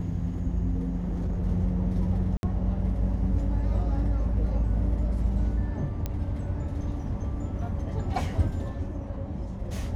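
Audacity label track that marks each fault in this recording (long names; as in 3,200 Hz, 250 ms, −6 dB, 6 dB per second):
0.970000	1.450000	clipping −25.5 dBFS
2.370000	2.430000	drop-out 61 ms
6.060000	6.060000	click −17 dBFS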